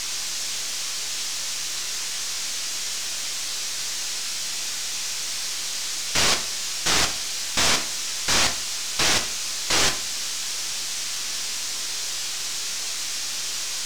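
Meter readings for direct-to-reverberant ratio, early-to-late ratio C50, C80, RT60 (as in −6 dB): 4.5 dB, 11.5 dB, 16.5 dB, 0.40 s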